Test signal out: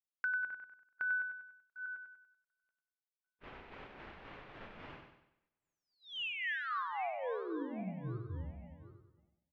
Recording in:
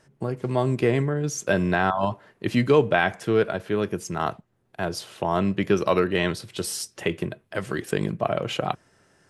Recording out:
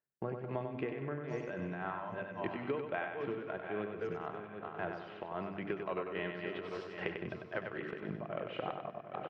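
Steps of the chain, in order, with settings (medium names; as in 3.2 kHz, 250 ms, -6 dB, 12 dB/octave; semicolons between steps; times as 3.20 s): backward echo that repeats 372 ms, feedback 50%, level -10.5 dB; low-pass 2.7 kHz 24 dB/octave; hum notches 50/100/150/200/250/300 Hz; gate -43 dBFS, range -29 dB; bass shelf 190 Hz -8 dB; compression, threshold -30 dBFS; tremolo 3.7 Hz, depth 65%; feedback delay 96 ms, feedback 45%, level -6 dB; trim -3.5 dB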